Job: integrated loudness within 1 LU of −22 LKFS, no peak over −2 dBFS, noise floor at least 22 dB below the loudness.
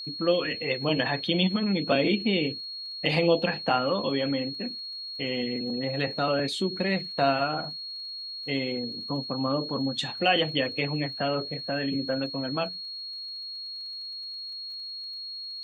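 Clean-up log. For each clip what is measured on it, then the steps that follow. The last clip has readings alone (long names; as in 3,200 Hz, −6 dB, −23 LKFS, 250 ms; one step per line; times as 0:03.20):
crackle rate 25 per second; interfering tone 4,300 Hz; level of the tone −35 dBFS; integrated loudness −28.0 LKFS; sample peak −10.0 dBFS; target loudness −22.0 LKFS
→ click removal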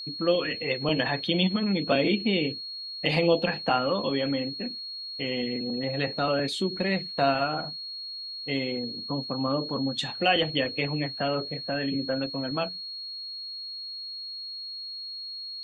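crackle rate 0 per second; interfering tone 4,300 Hz; level of the tone −35 dBFS
→ notch filter 4,300 Hz, Q 30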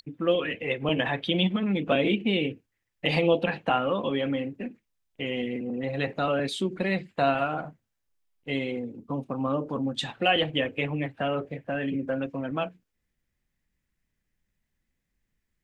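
interfering tone none found; integrated loudness −28.0 LKFS; sample peak −10.0 dBFS; target loudness −22.0 LKFS
→ level +6 dB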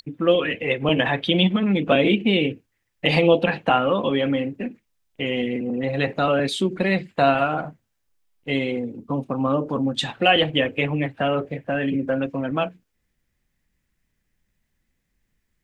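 integrated loudness −22.0 LKFS; sample peak −4.0 dBFS; background noise floor −75 dBFS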